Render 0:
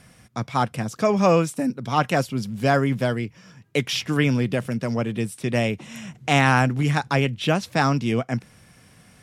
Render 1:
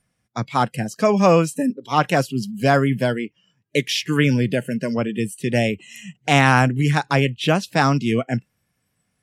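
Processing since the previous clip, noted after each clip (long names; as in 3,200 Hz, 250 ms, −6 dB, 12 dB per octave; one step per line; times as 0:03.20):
noise reduction from a noise print of the clip's start 23 dB
level +3 dB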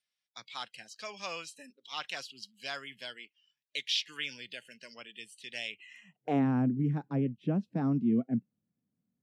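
band-pass filter sweep 3,800 Hz → 230 Hz, 0:05.68–0:06.47
level −4 dB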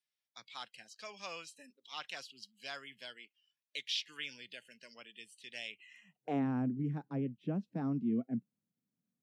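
high-pass filter 110 Hz
level −5.5 dB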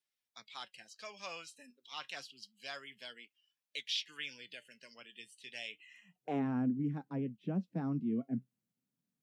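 flanger 0.29 Hz, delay 3.4 ms, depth 4.9 ms, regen +69%
level +4 dB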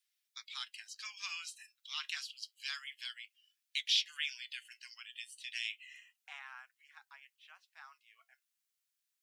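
Bessel high-pass filter 2,000 Hz, order 8
level +7 dB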